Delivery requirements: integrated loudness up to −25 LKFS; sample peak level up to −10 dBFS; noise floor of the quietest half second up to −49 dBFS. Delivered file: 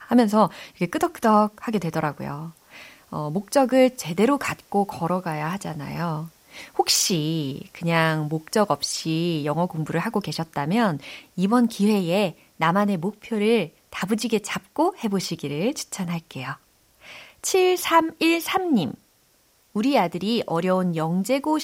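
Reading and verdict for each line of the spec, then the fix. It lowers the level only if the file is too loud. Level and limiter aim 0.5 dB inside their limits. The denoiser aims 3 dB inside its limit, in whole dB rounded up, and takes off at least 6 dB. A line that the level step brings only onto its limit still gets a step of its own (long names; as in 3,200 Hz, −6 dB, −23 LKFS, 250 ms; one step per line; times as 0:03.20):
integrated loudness −23.5 LKFS: out of spec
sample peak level −4.5 dBFS: out of spec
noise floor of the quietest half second −61 dBFS: in spec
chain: level −2 dB
brickwall limiter −10.5 dBFS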